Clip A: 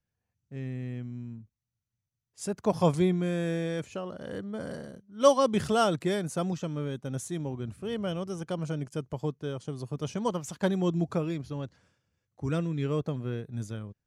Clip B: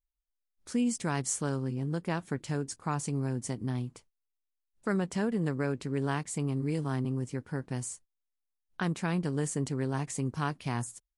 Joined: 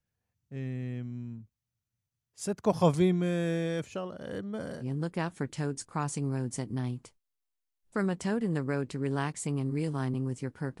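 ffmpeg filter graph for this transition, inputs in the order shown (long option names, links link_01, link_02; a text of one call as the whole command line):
ffmpeg -i cue0.wav -i cue1.wav -filter_complex "[0:a]asplit=3[link_01][link_02][link_03];[link_01]afade=type=out:start_time=4.06:duration=0.02[link_04];[link_02]tremolo=f=0.9:d=0.32,afade=type=in:start_time=4.06:duration=0.02,afade=type=out:start_time=4.85:duration=0.02[link_05];[link_03]afade=type=in:start_time=4.85:duration=0.02[link_06];[link_04][link_05][link_06]amix=inputs=3:normalize=0,apad=whole_dur=10.8,atrim=end=10.8,atrim=end=4.85,asetpts=PTS-STARTPTS[link_07];[1:a]atrim=start=1.7:end=7.71,asetpts=PTS-STARTPTS[link_08];[link_07][link_08]acrossfade=duration=0.06:curve1=tri:curve2=tri" out.wav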